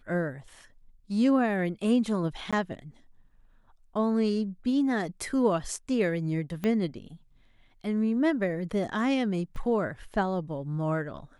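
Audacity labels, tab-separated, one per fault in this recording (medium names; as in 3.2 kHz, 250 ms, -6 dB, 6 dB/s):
2.510000	2.530000	dropout 16 ms
6.640000	6.640000	pop -18 dBFS
9.560000	9.560000	dropout 2.7 ms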